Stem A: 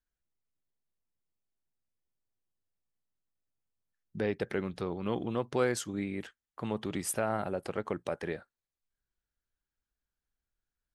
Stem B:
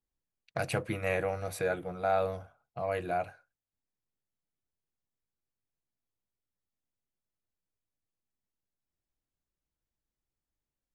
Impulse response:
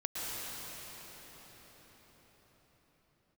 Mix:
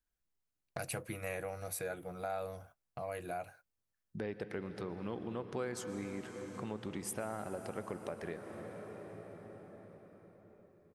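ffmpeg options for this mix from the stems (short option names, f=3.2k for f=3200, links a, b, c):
-filter_complex "[0:a]volume=-1.5dB,asplit=2[a][b];[b]volume=-11.5dB[c];[1:a]agate=range=-29dB:threshold=-52dB:ratio=16:detection=peak,aemphasis=mode=production:type=50fm,adelay=200,volume=-1dB[d];[2:a]atrim=start_sample=2205[e];[c][e]afir=irnorm=-1:irlink=0[f];[a][d][f]amix=inputs=3:normalize=0,equalizer=f=3.4k:w=1.5:g=-2.5,acompressor=threshold=-43dB:ratio=2"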